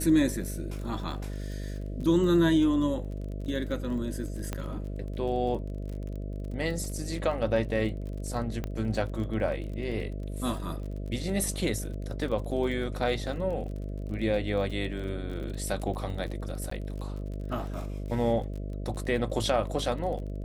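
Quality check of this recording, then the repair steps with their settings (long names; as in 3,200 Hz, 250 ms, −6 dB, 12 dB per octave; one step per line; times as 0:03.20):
mains buzz 50 Hz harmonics 13 −35 dBFS
surface crackle 31 per second −37 dBFS
0:04.53: click −17 dBFS
0:08.64: click −20 dBFS
0:16.70–0:16.71: drop-out 14 ms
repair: click removal
hum removal 50 Hz, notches 13
repair the gap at 0:16.70, 14 ms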